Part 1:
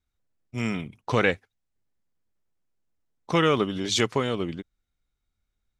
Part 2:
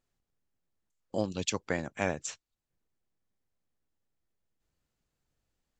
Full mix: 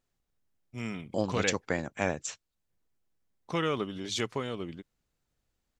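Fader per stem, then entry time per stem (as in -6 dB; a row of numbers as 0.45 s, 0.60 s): -8.5 dB, +1.0 dB; 0.20 s, 0.00 s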